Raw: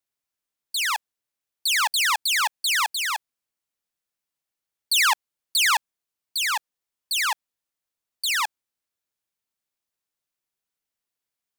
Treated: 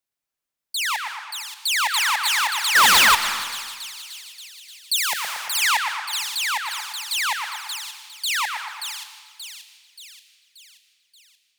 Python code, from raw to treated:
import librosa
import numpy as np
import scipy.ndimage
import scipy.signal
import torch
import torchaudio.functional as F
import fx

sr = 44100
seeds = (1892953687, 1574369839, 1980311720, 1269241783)

p1 = x + fx.echo_split(x, sr, split_hz=2800.0, low_ms=115, high_ms=580, feedback_pct=52, wet_db=-5.5, dry=0)
p2 = fx.leveller(p1, sr, passes=5, at=(2.75, 3.15))
p3 = fx.rev_freeverb(p2, sr, rt60_s=1.6, hf_ratio=0.85, predelay_ms=110, drr_db=11.0)
y = fx.spectral_comp(p3, sr, ratio=2.0, at=(4.96, 5.62))